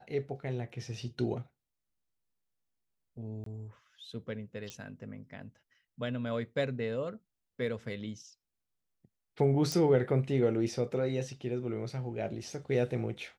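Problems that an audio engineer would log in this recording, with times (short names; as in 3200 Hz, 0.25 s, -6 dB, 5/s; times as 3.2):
3.44–3.46 gap 23 ms
4.7 pop -24 dBFS
9.72 pop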